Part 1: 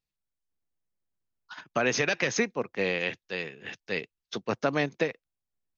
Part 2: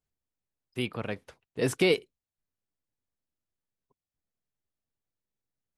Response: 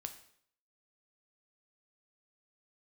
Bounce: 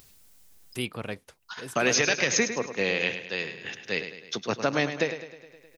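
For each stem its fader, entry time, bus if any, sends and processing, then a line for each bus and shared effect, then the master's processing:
−0.5 dB, 0.00 s, send −15 dB, echo send −9 dB, high-shelf EQ 4,500 Hz +11 dB
−1.0 dB, 0.00 s, no send, no echo send, high-shelf EQ 4,900 Hz +11.5 dB; automatic ducking −14 dB, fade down 0.25 s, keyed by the first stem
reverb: on, RT60 0.65 s, pre-delay 4 ms
echo: repeating echo 104 ms, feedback 47%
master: upward compression, threshold −36 dBFS

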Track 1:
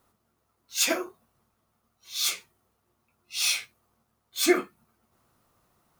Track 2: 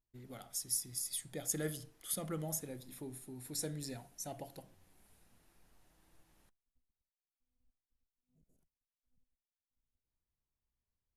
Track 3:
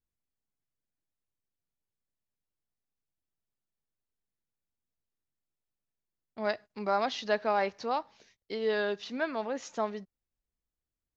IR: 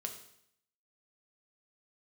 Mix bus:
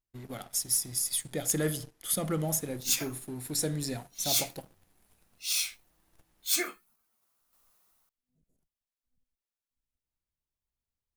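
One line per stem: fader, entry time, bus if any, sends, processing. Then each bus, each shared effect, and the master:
−10.5 dB, 2.10 s, no send, spectral tilt +3.5 dB per octave; automatic gain control gain up to 4 dB; sample-and-hold tremolo
+2.0 dB, 0.00 s, no send, leveller curve on the samples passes 2
muted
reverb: not used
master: no processing

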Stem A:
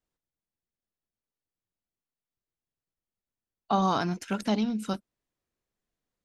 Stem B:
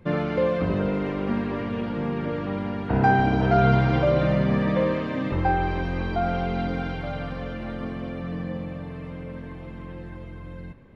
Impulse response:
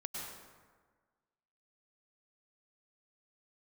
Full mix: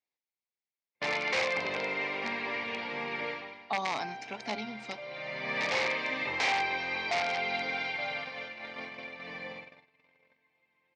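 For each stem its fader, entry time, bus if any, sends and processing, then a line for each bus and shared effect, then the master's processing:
−8.0 dB, 0.00 s, no send, no processing
−4.5 dB, 0.95 s, no send, noise gate −31 dBFS, range −29 dB; spectral tilt +3.5 dB per octave; automatic ducking −18 dB, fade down 0.40 s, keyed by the first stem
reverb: not used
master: high-shelf EQ 2,300 Hz +7.5 dB; wrap-around overflow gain 23.5 dB; loudspeaker in its box 170–5,300 Hz, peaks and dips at 190 Hz −10 dB, 320 Hz −6 dB, 850 Hz +5 dB, 1,400 Hz −7 dB, 2,200 Hz +10 dB, 3,100 Hz −4 dB

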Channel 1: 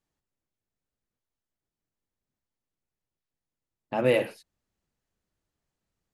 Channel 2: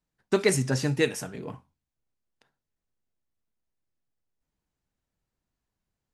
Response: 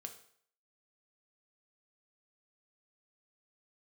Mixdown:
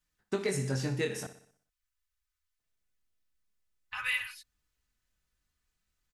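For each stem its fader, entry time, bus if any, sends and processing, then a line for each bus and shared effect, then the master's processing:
+1.0 dB, 0.00 s, no send, no echo send, inverse Chebyshev band-stop filter 160–700 Hz, stop band 40 dB; comb filter 4 ms, depth 93%
+2.0 dB, 0.00 s, muted 0:01.27–0:02.59, no send, echo send −13 dB, tuned comb filter 61 Hz, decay 1.1 s, harmonics odd, mix 40%; chorus effect 0.41 Hz, delay 19 ms, depth 4.8 ms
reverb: not used
echo: repeating echo 61 ms, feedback 50%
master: downward compressor, threshold −27 dBFS, peak gain reduction 6 dB

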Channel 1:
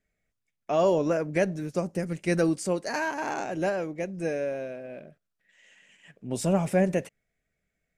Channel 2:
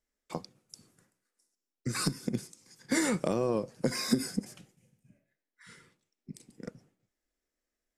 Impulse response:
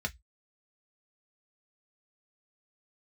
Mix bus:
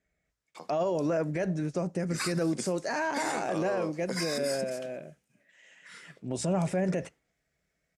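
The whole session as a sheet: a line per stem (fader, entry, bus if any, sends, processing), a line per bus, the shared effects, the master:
+1.0 dB, 0.00 s, send −15.5 dB, low-pass filter 8,800 Hz 24 dB per octave
−4.0 dB, 0.25 s, no send, meter weighting curve A; brickwall limiter −26.5 dBFS, peak gain reduction 9 dB; automatic gain control gain up to 8 dB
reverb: on, RT60 0.10 s, pre-delay 3 ms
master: high-pass filter 40 Hz; brickwall limiter −21 dBFS, peak gain reduction 11 dB

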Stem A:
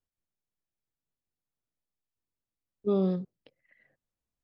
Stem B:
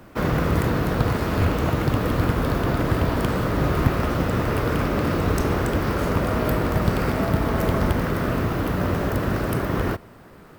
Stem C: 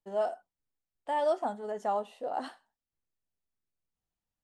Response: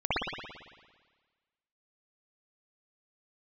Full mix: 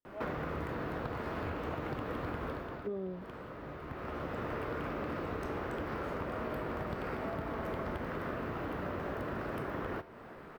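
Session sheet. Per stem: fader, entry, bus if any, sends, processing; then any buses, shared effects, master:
−3.0 dB, 0.00 s, no send, parametric band 280 Hz +8.5 dB 2.8 octaves
+3.0 dB, 0.05 s, no send, automatic ducking −19 dB, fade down 0.35 s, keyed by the first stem
−9.5 dB, 0.00 s, no send, no processing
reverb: not used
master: bass and treble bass −8 dB, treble −14 dB; tuned comb filter 75 Hz, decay 0.3 s, mix 50%; downward compressor 5 to 1, threshold −36 dBFS, peak gain reduction 14.5 dB

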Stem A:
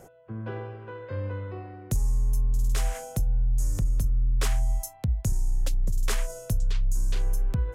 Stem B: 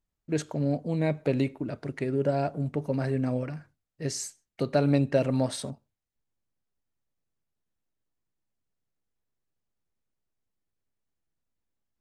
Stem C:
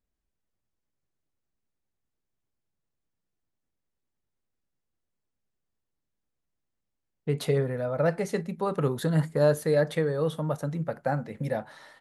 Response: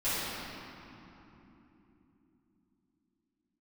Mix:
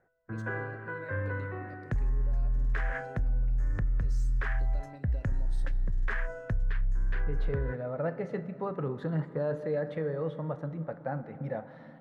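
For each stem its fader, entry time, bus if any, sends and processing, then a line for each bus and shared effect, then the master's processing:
−2.0 dB, 0.00 s, no send, low-pass with resonance 1,700 Hz, resonance Q 6.4; noise gate with hold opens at −39 dBFS
−19.0 dB, 0.00 s, send −18.5 dB, running median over 3 samples; downward compressor 5 to 1, threshold −27 dBFS, peak gain reduction 9 dB
−6.0 dB, 0.00 s, send −22.5 dB, low-pass filter 2,000 Hz 12 dB per octave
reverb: on, RT60 3.5 s, pre-delay 3 ms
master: brickwall limiter −22.5 dBFS, peak gain reduction 10 dB

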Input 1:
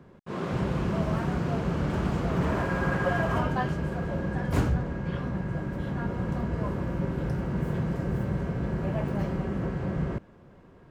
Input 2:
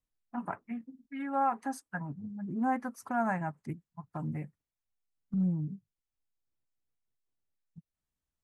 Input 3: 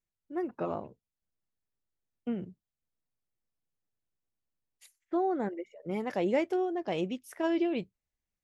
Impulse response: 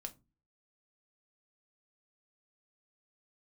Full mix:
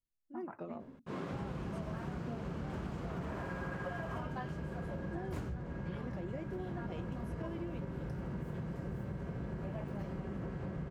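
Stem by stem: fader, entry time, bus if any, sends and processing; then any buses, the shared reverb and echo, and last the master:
−5.5 dB, 0.80 s, no send, no processing
−5.5 dB, 0.00 s, no send, low-pass that shuts in the quiet parts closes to 360 Hz, open at −30 dBFS; downward compressor, threshold −38 dBFS, peak gain reduction 13.5 dB
−9.0 dB, 0.00 s, send −6 dB, harmonic and percussive parts rebalanced percussive −4 dB; rotating-speaker cabinet horn 6.3 Hz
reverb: on, RT60 0.25 s, pre-delay 4 ms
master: downward compressor, threshold −37 dBFS, peak gain reduction 12 dB

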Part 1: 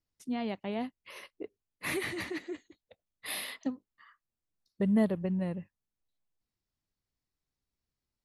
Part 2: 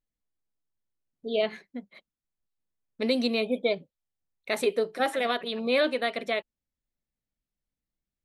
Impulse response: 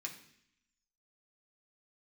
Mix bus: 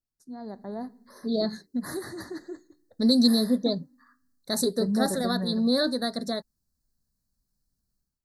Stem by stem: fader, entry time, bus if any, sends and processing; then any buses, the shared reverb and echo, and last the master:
−9.0 dB, 0.00 s, send −8 dB, no processing
−5.5 dB, 0.00 s, no send, automatic gain control gain up to 9 dB; flat-topped bell 790 Hz −13.5 dB 2.9 octaves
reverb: on, RT60 0.65 s, pre-delay 3 ms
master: elliptic band-stop filter 1,700–4,200 Hz, stop band 50 dB; automatic gain control gain up to 8 dB

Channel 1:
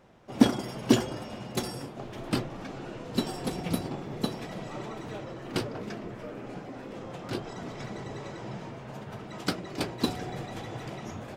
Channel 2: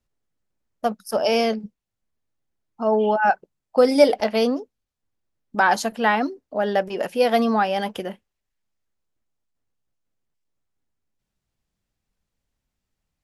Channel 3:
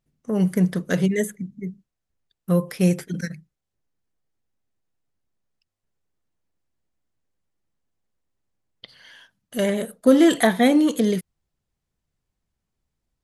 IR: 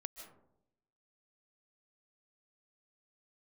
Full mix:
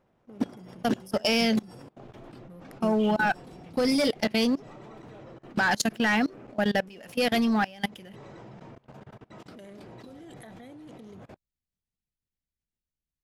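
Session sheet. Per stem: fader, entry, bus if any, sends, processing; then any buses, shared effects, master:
−4.0 dB, 0.00 s, no send, high-shelf EQ 2,700 Hz −7 dB
−1.5 dB, 0.00 s, no send, flat-topped bell 640 Hz −9.5 dB 2.4 octaves; leveller curve on the samples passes 2
−3.5 dB, 0.00 s, no send, adaptive Wiener filter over 41 samples; parametric band 140 Hz −7.5 dB 0.37 octaves; downward compressor 6 to 1, threshold −28 dBFS, peak gain reduction 17 dB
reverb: not used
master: output level in coarse steps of 23 dB

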